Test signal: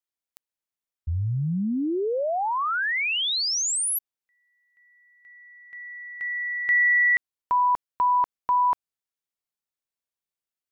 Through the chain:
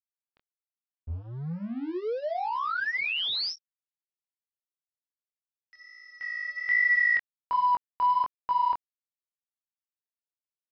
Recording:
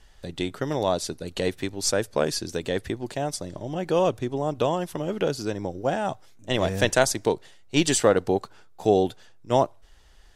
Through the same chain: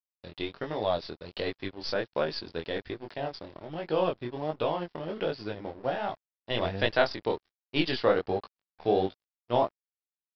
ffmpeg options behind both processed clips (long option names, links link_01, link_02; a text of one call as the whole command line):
ffmpeg -i in.wav -af "equalizer=frequency=150:width_type=o:width=2.7:gain=-4.5,aresample=11025,aeval=exprs='sgn(val(0))*max(abs(val(0))-0.0075,0)':channel_layout=same,aresample=44100,flanger=delay=18:depth=7.4:speed=1.3" out.wav